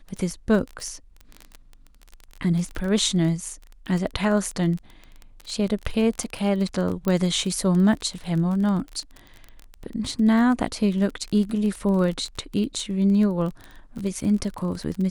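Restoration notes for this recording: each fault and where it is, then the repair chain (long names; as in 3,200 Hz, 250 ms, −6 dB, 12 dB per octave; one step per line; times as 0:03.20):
surface crackle 24 per second −28 dBFS
0:07.08: click −12 dBFS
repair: click removal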